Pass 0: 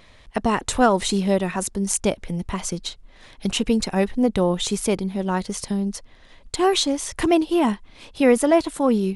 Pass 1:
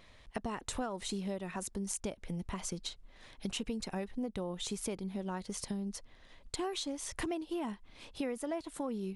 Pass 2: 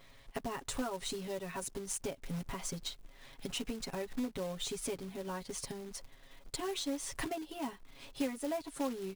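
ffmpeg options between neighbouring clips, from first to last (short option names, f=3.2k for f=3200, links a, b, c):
-af "acompressor=threshold=-26dB:ratio=6,volume=-8.5dB"
-af "aecho=1:1:7.3:0.96,acrusher=bits=3:mode=log:mix=0:aa=0.000001,volume=-3dB"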